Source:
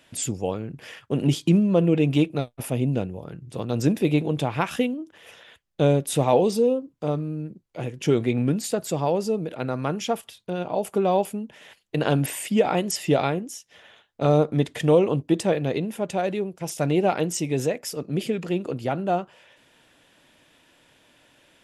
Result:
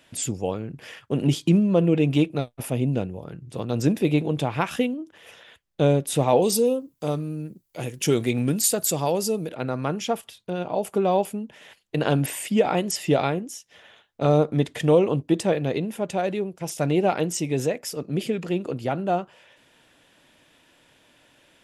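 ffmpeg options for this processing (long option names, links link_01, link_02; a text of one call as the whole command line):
ffmpeg -i in.wav -filter_complex "[0:a]asettb=1/sr,asplit=3[link_01][link_02][link_03];[link_01]atrim=end=6.424[link_04];[link_02]atrim=start=6.42:end=9.49,asetpts=PTS-STARTPTS,afade=type=in:duration=0.004:curve=qsin,afade=type=out:start_time=3.066:duration=0.004:curve=qsin,aemphasis=mode=production:type=75fm[link_05];[link_03]atrim=start=9.486[link_06];[link_04][link_05]acrossfade=duration=0.004:curve1=hsin:curve2=qsin[link_07];[link_07][link_06]acrossfade=duration=0.004:curve1=qsin:curve2=hsin" out.wav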